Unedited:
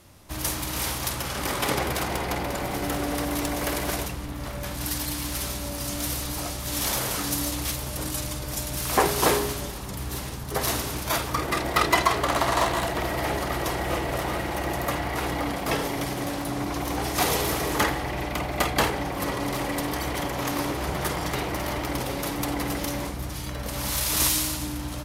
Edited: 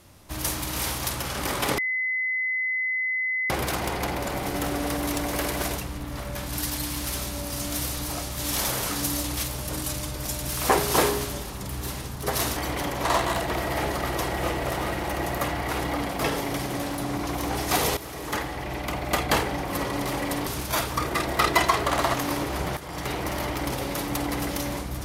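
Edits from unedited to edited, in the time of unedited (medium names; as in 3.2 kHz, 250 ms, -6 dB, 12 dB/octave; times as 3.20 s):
1.78 s: add tone 2.03 kHz -23.5 dBFS 1.72 s
10.84–12.51 s: swap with 19.94–20.42 s
17.44–18.91 s: fade in equal-power, from -14.5 dB
21.05–21.60 s: fade in equal-power, from -17 dB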